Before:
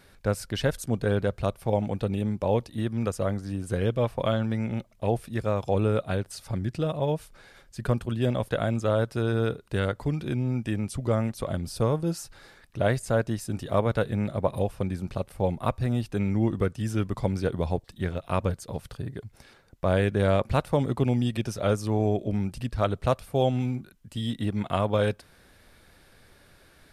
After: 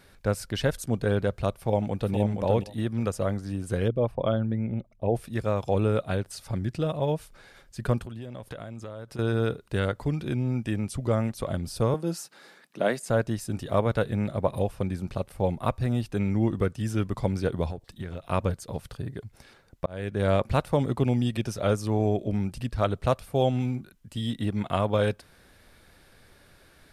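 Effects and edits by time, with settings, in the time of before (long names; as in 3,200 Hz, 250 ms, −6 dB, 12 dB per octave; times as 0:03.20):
0:01.52–0:02.16: delay throw 470 ms, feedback 15%, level −5 dB
0:03.88–0:05.15: spectral envelope exaggerated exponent 1.5
0:08.04–0:09.19: downward compressor 10 to 1, threshold −34 dBFS
0:11.94–0:13.10: Butterworth high-pass 170 Hz
0:17.70–0:18.25: downward compressor, threshold −30 dBFS
0:19.86–0:20.33: fade in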